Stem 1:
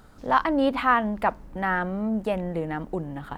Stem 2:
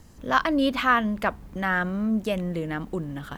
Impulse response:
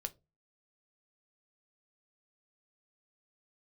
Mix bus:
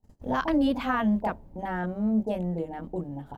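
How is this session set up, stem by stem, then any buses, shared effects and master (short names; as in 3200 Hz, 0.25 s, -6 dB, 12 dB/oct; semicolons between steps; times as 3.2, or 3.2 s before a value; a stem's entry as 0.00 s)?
-8.0 dB, 0.00 s, send -4.5 dB, steep low-pass 960 Hz 96 dB/oct
+1.0 dB, 27 ms, polarity flipped, no send, low shelf 500 Hz +10.5 dB; upward expander 1.5:1, over -33 dBFS; auto duck -12 dB, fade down 1.85 s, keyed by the first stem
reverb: on, pre-delay 5 ms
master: gate -47 dBFS, range -22 dB; limiter -17 dBFS, peak gain reduction 7.5 dB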